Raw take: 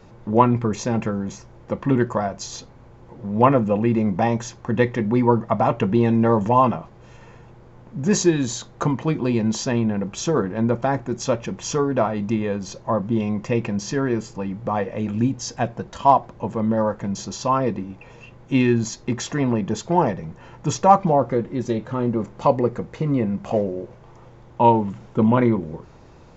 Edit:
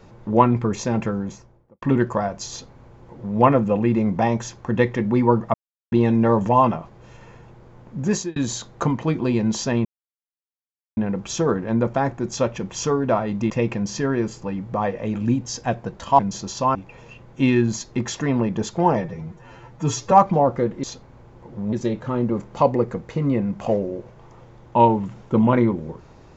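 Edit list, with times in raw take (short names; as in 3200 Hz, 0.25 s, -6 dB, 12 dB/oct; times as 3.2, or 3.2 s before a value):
1.14–1.82 studio fade out
2.5–3.39 copy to 21.57
5.54–5.92 mute
8.03–8.36 fade out
9.85 insert silence 1.12 s
12.38–13.43 cut
16.12–17.03 cut
17.59–17.87 cut
20.08–20.85 stretch 1.5×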